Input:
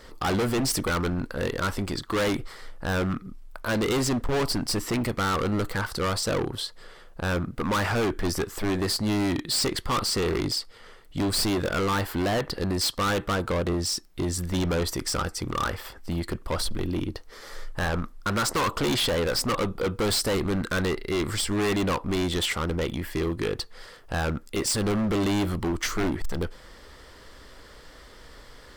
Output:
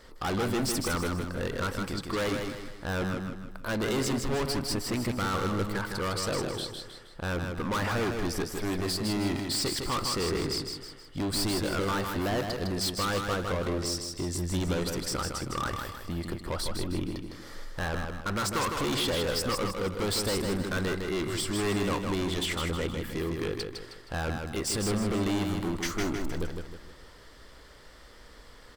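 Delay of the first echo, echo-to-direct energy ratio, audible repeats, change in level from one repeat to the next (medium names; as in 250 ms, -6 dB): 157 ms, -4.0 dB, 4, -7.5 dB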